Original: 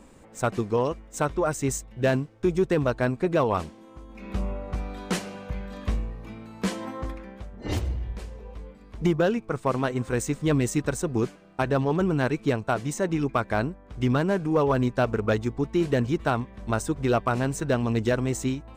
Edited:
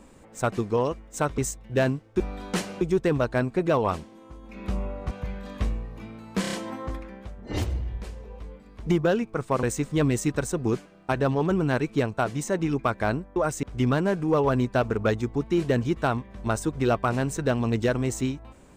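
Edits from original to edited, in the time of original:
1.38–1.65 s: move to 13.86 s
4.77–5.38 s: move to 2.47 s
6.68 s: stutter 0.03 s, 5 plays
9.78–10.13 s: delete

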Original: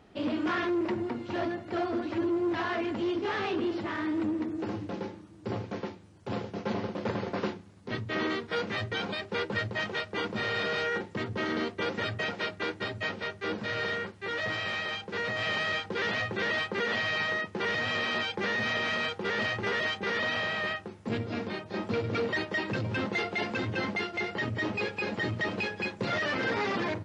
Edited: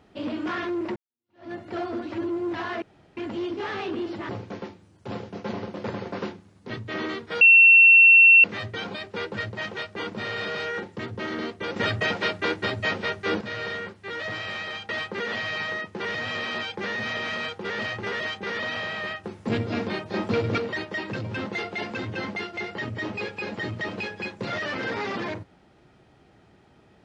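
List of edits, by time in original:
0.96–1.52 s: fade in exponential
2.82 s: insert room tone 0.35 s
3.94–5.50 s: delete
8.62 s: add tone 2.71 kHz -9.5 dBFS 1.03 s
11.94–13.59 s: gain +7 dB
15.07–16.49 s: delete
20.84–22.18 s: gain +6 dB

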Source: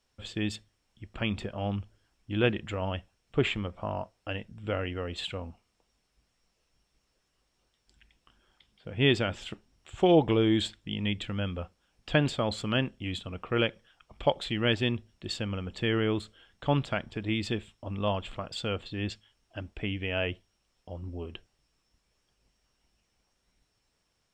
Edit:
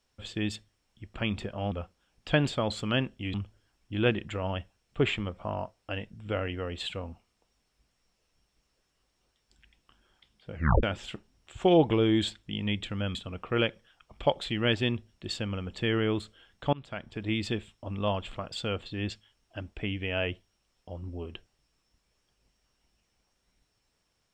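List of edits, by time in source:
8.92 s: tape stop 0.29 s
11.53–13.15 s: move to 1.72 s
16.73–17.28 s: fade in, from -24 dB

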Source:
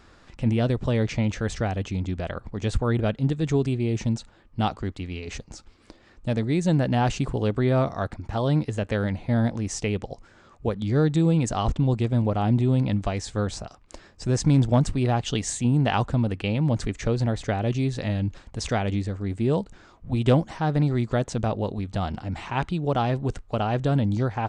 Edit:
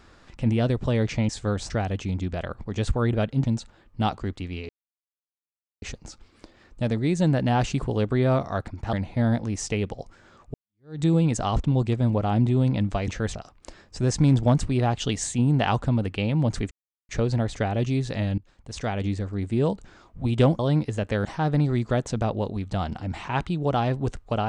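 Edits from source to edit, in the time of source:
1.29–1.56 s: swap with 13.20–13.61 s
3.30–4.03 s: delete
5.28 s: insert silence 1.13 s
8.39–9.05 s: move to 20.47 s
10.66–11.13 s: fade in exponential
16.97 s: insert silence 0.38 s
18.26–19.02 s: fade in, from -23 dB

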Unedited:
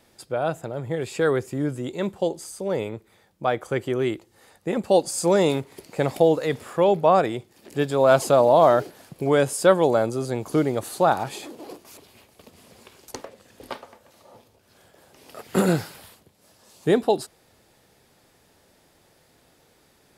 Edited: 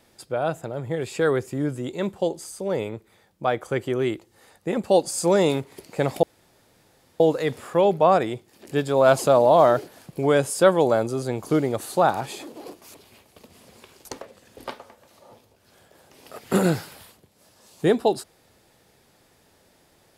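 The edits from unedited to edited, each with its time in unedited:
6.23 s: insert room tone 0.97 s

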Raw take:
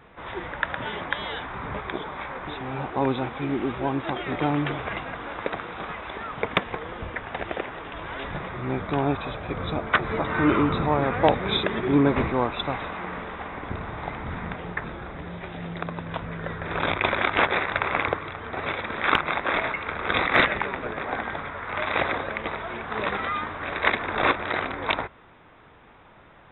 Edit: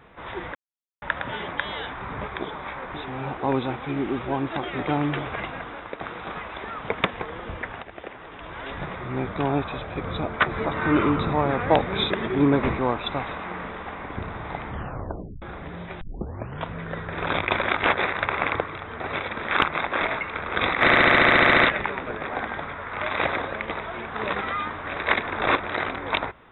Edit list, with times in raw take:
0.55 s: insert silence 0.47 s
5.12–5.54 s: fade out, to -8.5 dB
7.35–8.37 s: fade in, from -12.5 dB
14.22 s: tape stop 0.73 s
15.54 s: tape start 0.63 s
20.35 s: stutter 0.07 s, 12 plays

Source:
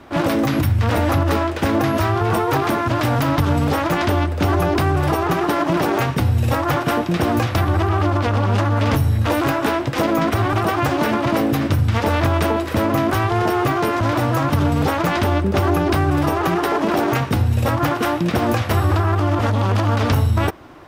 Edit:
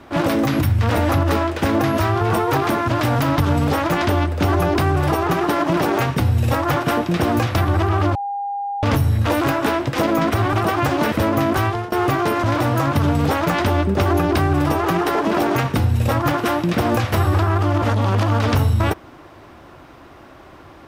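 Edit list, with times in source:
8.15–8.83 s: bleep 806 Hz -22 dBFS
11.12–12.69 s: delete
13.22–13.49 s: fade out, to -21.5 dB

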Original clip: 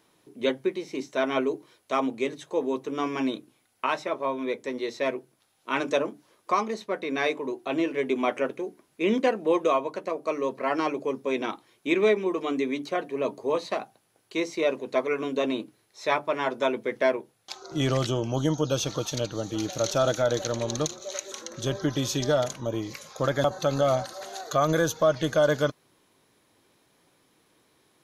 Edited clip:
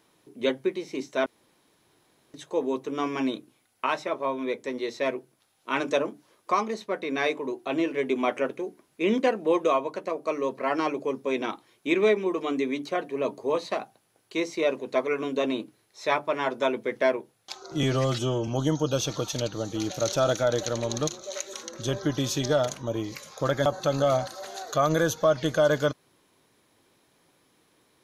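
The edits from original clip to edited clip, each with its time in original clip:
1.26–2.34 s: room tone
17.83–18.26 s: stretch 1.5×

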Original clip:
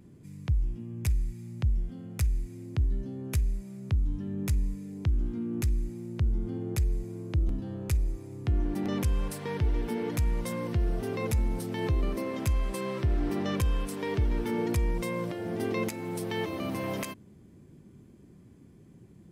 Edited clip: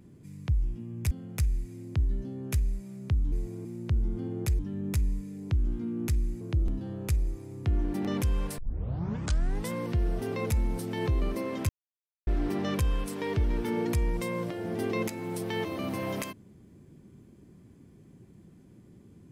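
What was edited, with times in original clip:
1.11–1.92 s: delete
4.13–5.95 s: swap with 6.89–7.22 s
9.39 s: tape start 1.13 s
12.50–13.08 s: mute

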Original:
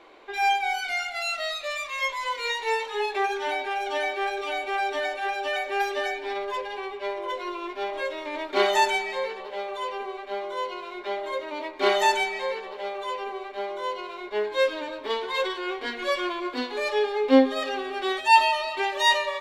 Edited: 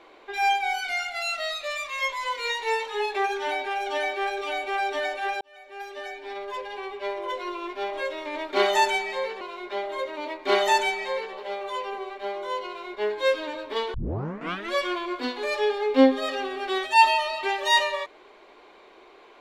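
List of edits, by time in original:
5.41–7.06 s: fade in linear
9.41–10.75 s: delete
15.28 s: tape start 0.78 s

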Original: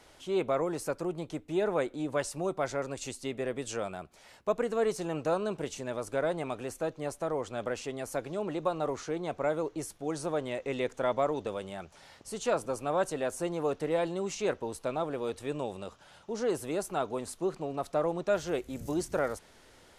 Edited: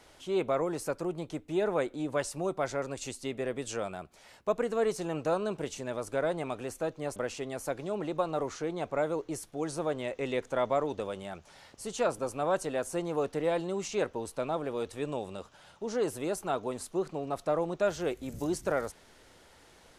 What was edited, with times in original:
7.16–7.63 s: delete

